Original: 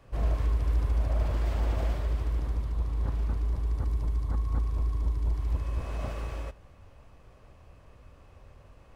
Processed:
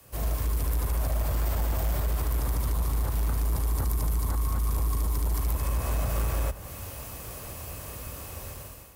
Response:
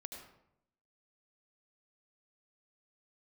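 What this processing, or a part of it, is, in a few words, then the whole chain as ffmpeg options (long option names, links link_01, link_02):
FM broadcast chain: -filter_complex "[0:a]highpass=52,dynaudnorm=framelen=530:gausssize=3:maxgain=15dB,acrossover=split=190|570|1700[link_01][link_02][link_03][link_04];[link_01]acompressor=threshold=-20dB:ratio=4[link_05];[link_02]acompressor=threshold=-40dB:ratio=4[link_06];[link_03]acompressor=threshold=-35dB:ratio=4[link_07];[link_04]acompressor=threshold=-52dB:ratio=4[link_08];[link_05][link_06][link_07][link_08]amix=inputs=4:normalize=0,aemphasis=mode=production:type=50fm,alimiter=limit=-18.5dB:level=0:latency=1:release=102,asoftclip=type=hard:threshold=-22dB,lowpass=frequency=15000:width=0.5412,lowpass=frequency=15000:width=1.3066,aemphasis=mode=production:type=50fm"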